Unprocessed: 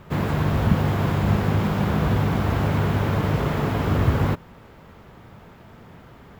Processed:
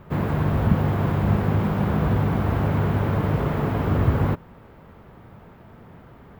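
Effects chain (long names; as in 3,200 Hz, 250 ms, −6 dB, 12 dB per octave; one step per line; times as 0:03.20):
parametric band 6,200 Hz −10 dB 2.4 octaves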